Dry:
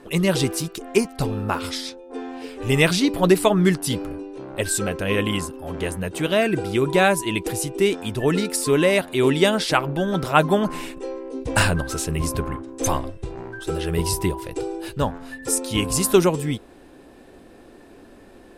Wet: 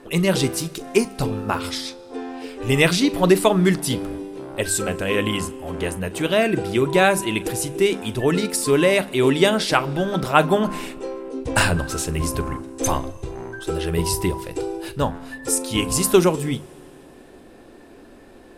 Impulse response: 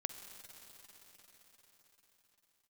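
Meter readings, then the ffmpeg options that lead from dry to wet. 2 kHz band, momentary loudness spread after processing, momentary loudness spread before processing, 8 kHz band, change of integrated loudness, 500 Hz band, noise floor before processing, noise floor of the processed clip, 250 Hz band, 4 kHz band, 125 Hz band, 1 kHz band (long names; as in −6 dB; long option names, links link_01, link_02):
+1.0 dB, 14 LU, 14 LU, +1.0 dB, +1.0 dB, +1.0 dB, −47 dBFS, −46 dBFS, +0.5 dB, +1.0 dB, 0.0 dB, +1.0 dB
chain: -filter_complex "[0:a]bandreject=frequency=50:width_type=h:width=6,bandreject=frequency=100:width_type=h:width=6,bandreject=frequency=150:width_type=h:width=6,bandreject=frequency=200:width_type=h:width=6,asplit=2[link_01][link_02];[1:a]atrim=start_sample=2205,asetrate=79380,aresample=44100,adelay=41[link_03];[link_02][link_03]afir=irnorm=-1:irlink=0,volume=-10dB[link_04];[link_01][link_04]amix=inputs=2:normalize=0,volume=1dB"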